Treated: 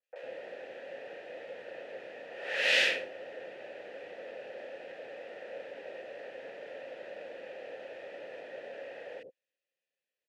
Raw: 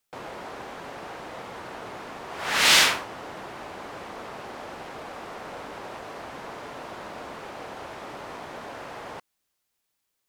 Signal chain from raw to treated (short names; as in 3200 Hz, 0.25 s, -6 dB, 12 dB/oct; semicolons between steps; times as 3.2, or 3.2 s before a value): vowel filter e; three bands offset in time mids, highs, lows 30/100 ms, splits 460/1700 Hz; gain +7 dB